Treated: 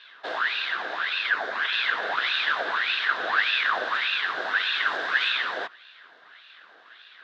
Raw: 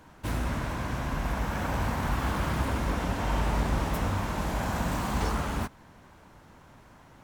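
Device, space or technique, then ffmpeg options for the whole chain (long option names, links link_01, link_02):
voice changer toy: -filter_complex "[0:a]asettb=1/sr,asplit=3[link_01][link_02][link_03];[link_01]atrim=end=1.294[link_04];[link_02]atrim=start=1.29:end=1.73,asetpts=PTS-STARTPTS,afade=type=in:duration=0.004:curve=qsin,afade=type=out:start_time=0.436:duration=0.004:curve=qsin,equalizer=frequency=2100:width=4.9:gain=-14.5[link_05];[link_03]atrim=start=1.726[link_06];[link_04][link_05]acrossfade=duration=0.004:curve1=hsin:curve2=qsin[link_07];[link_07][link_06]acrossfade=duration=0.004:curve1=qsin:curve2=hsin,aeval=exprs='val(0)*sin(2*PI*1600*n/s+1600*0.65/1.7*sin(2*PI*1.7*n/s))':channel_layout=same,highpass=520,equalizer=frequency=550:width_type=q:width=4:gain=-5,equalizer=frequency=860:width_type=q:width=4:gain=-7,equalizer=frequency=1600:width_type=q:width=4:gain=8,equalizer=frequency=2300:width_type=q:width=4:gain=-7,equalizer=frequency=3700:width_type=q:width=4:gain=9,lowpass=frequency=4500:width=0.5412,lowpass=frequency=4500:width=1.3066,volume=5dB"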